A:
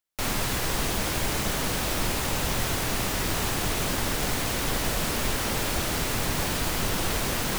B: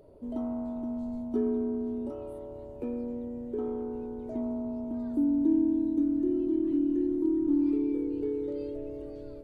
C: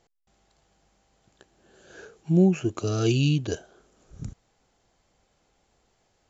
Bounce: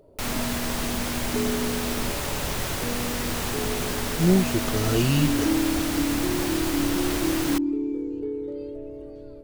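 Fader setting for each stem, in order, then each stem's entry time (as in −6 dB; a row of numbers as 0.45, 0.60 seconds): −1.5, +1.0, −0.5 decibels; 0.00, 0.00, 1.90 seconds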